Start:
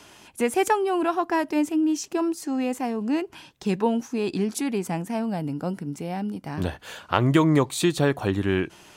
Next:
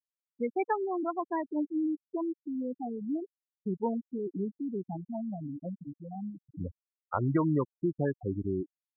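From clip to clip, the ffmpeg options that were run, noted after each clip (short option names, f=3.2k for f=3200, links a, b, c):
-af "afftfilt=real='re*gte(hypot(re,im),0.224)':imag='im*gte(hypot(re,im),0.224)':win_size=1024:overlap=0.75,volume=-8dB"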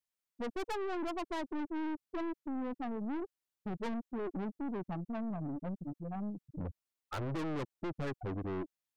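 -af "aeval=exprs='(tanh(100*val(0)+0.4)-tanh(0.4))/100':c=same,volume=4.5dB"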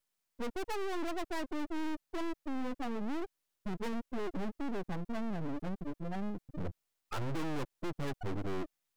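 -af "aeval=exprs='max(val(0),0)':c=same,volume=9.5dB"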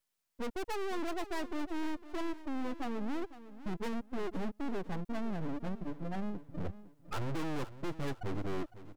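-af "aecho=1:1:506|1012|1518:0.178|0.0622|0.0218"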